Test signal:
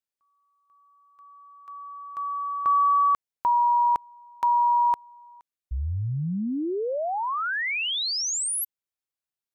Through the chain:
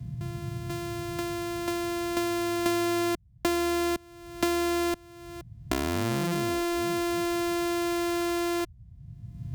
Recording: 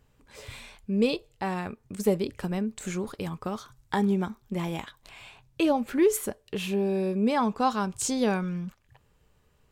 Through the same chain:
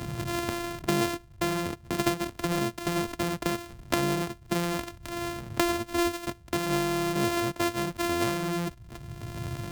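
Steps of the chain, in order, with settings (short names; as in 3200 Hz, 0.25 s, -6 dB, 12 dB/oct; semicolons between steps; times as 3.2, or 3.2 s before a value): sample sorter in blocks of 128 samples; band noise 36–140 Hz -57 dBFS; three-band squash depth 100%; gain -1.5 dB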